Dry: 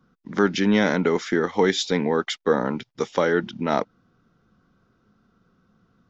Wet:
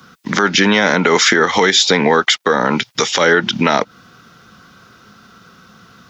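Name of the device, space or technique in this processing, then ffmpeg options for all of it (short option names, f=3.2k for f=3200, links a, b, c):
mastering chain: -filter_complex "[0:a]highpass=60,equalizer=f=310:t=o:w=0.77:g=-2,acrossover=split=500|1400[a][b][c];[a]acompressor=threshold=-25dB:ratio=4[d];[b]acompressor=threshold=-28dB:ratio=4[e];[c]acompressor=threshold=-38dB:ratio=4[f];[d][e][f]amix=inputs=3:normalize=0,acompressor=threshold=-28dB:ratio=2,tiltshelf=f=1.1k:g=-8,alimiter=level_in=23.5dB:limit=-1dB:release=50:level=0:latency=1,volume=-1dB"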